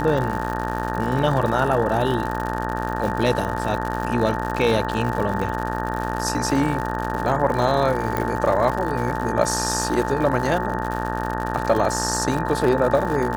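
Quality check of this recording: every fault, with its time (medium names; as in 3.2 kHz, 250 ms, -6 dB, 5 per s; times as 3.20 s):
buzz 60 Hz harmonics 31 -27 dBFS
crackle 130 per s -26 dBFS
whine 880 Hz -28 dBFS
8.17 s: pop -10 dBFS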